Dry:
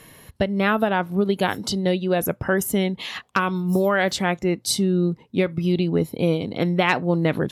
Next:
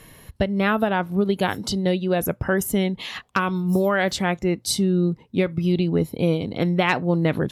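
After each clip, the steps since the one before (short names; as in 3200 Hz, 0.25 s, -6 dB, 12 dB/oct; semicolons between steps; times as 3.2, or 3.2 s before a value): low shelf 72 Hz +11.5 dB; gain -1 dB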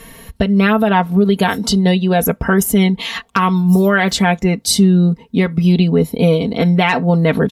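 comb 4.4 ms, depth 70%; limiter -11 dBFS, peak gain reduction 7.5 dB; gain +7.5 dB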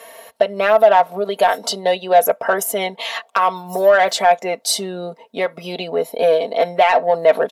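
resonant high-pass 620 Hz, resonance Q 4.9; in parallel at -6 dB: soft clip -10.5 dBFS, distortion -8 dB; on the sum: gain -6 dB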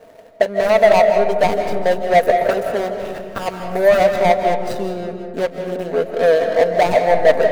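median filter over 41 samples; digital reverb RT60 1.8 s, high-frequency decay 0.3×, pre-delay 0.12 s, DRR 5 dB; gain +2 dB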